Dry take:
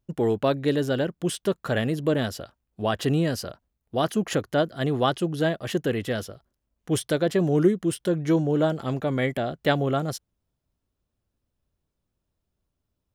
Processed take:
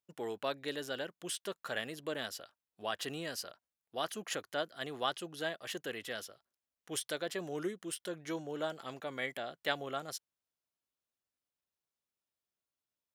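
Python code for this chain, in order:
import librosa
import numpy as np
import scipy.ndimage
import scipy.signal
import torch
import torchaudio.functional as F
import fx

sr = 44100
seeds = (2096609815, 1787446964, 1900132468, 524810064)

y = fx.highpass(x, sr, hz=1400.0, slope=6)
y = y * 10.0 ** (-5.5 / 20.0)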